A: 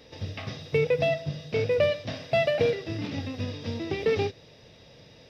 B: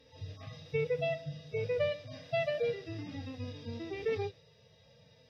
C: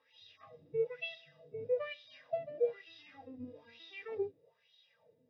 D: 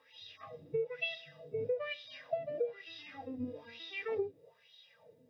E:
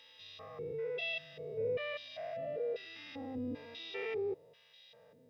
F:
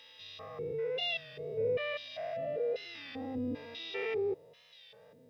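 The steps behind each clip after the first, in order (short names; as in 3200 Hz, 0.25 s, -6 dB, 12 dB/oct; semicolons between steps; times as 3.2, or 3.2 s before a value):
median-filter separation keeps harmonic; gain -8 dB
wah 1.1 Hz 280–3700 Hz, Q 4.3; gain +4.5 dB
compressor 10:1, threshold -38 dBFS, peak gain reduction 13 dB; gain +7 dB
stepped spectrum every 0.2 s; gain +3.5 dB
record warp 33 1/3 rpm, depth 100 cents; gain +3.5 dB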